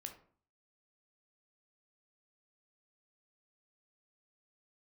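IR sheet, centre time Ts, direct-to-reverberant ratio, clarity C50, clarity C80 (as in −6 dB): 13 ms, 4.5 dB, 9.5 dB, 14.5 dB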